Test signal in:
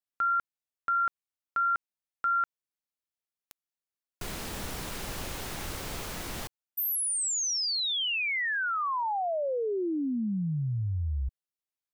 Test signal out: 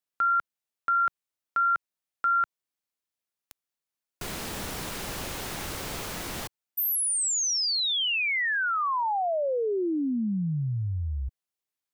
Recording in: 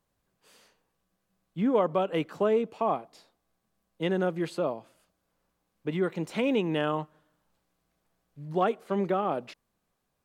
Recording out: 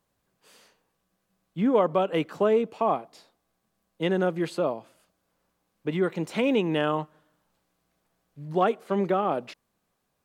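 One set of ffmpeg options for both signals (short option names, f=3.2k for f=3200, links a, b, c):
-af "lowshelf=f=63:g=-7.5,volume=3dB"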